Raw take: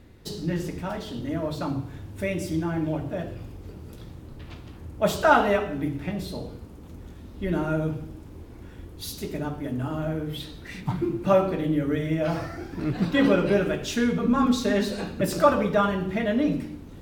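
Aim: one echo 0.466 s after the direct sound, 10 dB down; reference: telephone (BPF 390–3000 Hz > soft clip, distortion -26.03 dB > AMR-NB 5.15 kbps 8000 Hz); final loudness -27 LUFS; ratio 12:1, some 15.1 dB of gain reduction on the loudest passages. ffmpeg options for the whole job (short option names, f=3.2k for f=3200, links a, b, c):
-af "acompressor=threshold=-28dB:ratio=12,highpass=390,lowpass=3k,aecho=1:1:466:0.316,asoftclip=threshold=-21.5dB,volume=13dB" -ar 8000 -c:a libopencore_amrnb -b:a 5150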